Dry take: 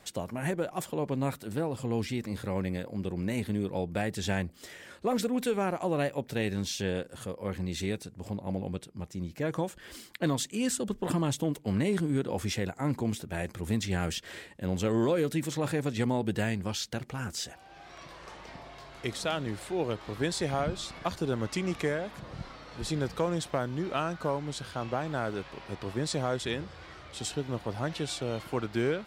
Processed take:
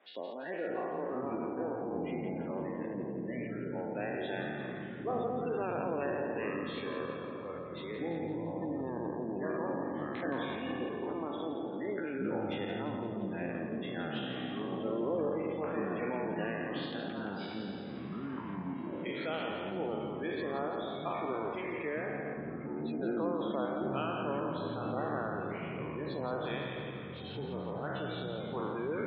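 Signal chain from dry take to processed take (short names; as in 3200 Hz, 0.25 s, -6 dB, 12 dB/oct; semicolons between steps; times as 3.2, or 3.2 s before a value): spectral trails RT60 2.07 s; LPF 3500 Hz 24 dB/oct; spectral gate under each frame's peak -20 dB strong; HPF 280 Hz 24 dB/oct; echoes that change speed 0.428 s, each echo -7 st, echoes 2; on a send: split-band echo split 490 Hz, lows 0.41 s, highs 0.17 s, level -8 dB; on the sum: gain -8.5 dB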